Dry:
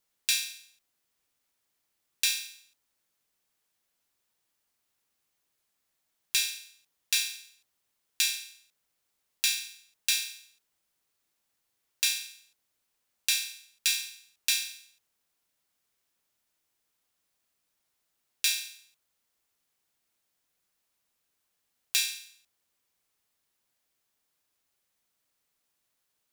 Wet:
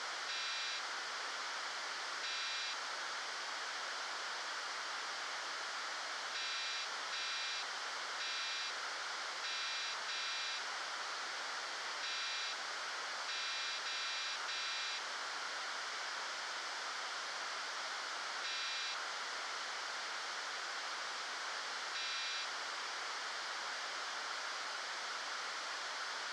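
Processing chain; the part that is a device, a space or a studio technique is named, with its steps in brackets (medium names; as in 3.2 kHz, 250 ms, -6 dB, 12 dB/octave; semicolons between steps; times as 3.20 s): home computer beeper (one-bit comparator; cabinet simulation 680–4800 Hz, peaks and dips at 1.4 kHz +5 dB, 2.6 kHz -10 dB, 3.8 kHz -6 dB); trim +4.5 dB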